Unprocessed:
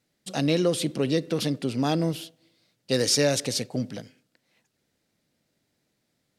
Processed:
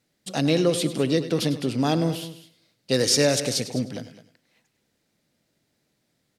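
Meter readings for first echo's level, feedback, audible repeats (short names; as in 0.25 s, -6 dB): -14.0 dB, no steady repeat, 3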